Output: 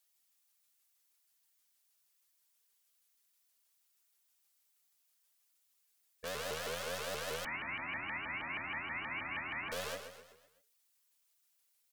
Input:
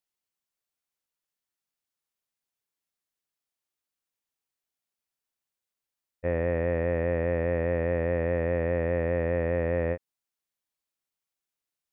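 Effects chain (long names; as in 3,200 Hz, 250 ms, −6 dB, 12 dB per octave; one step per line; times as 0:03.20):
stylus tracing distortion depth 0.31 ms
hard clipping −33 dBFS, distortion −6 dB
comb filter 4.4 ms, depth 99%
brickwall limiter −32 dBFS, peak gain reduction 5 dB
spectral tilt +3 dB per octave
mains-hum notches 50/100/150/200/250/300/350/400/450/500 Hz
repeating echo 128 ms, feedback 48%, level −8.5 dB
0:07.45–0:09.72: voice inversion scrambler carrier 2,600 Hz
pitch modulation by a square or saw wave saw up 6.3 Hz, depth 250 cents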